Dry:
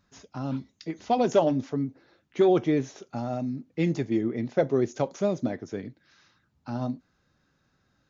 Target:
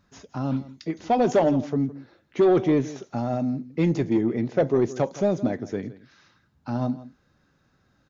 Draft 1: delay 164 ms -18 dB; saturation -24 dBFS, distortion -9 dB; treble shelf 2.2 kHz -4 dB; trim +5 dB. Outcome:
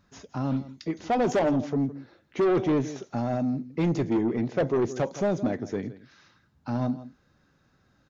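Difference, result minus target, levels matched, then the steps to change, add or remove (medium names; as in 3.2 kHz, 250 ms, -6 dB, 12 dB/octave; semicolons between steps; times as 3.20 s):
saturation: distortion +7 dB
change: saturation -17 dBFS, distortion -16 dB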